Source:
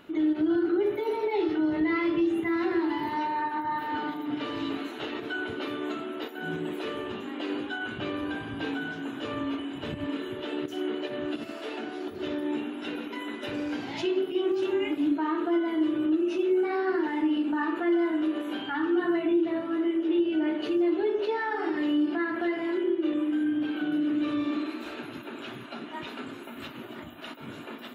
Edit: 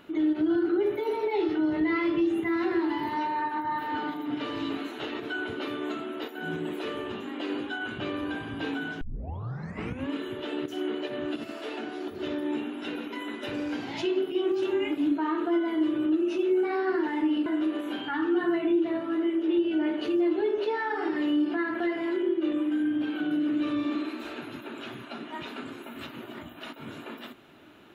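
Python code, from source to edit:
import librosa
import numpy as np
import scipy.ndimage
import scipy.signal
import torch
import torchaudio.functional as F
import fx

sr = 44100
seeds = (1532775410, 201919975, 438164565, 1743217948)

y = fx.edit(x, sr, fx.tape_start(start_s=9.01, length_s=1.1),
    fx.cut(start_s=17.46, length_s=0.61), tone=tone)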